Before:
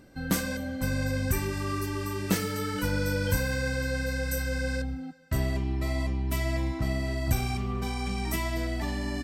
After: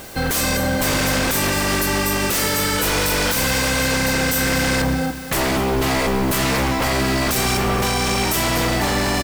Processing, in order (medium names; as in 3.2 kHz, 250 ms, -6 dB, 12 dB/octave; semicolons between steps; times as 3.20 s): spectral peaks clipped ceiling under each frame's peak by 17 dB; peaking EQ 3.2 kHz -4 dB 2.4 oct; in parallel at -3.5 dB: sine folder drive 19 dB, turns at -10.5 dBFS; on the sum: added noise white -37 dBFS; on a send: feedback delay 241 ms, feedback 45%, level -13 dB; on the sum: trim -3.5 dB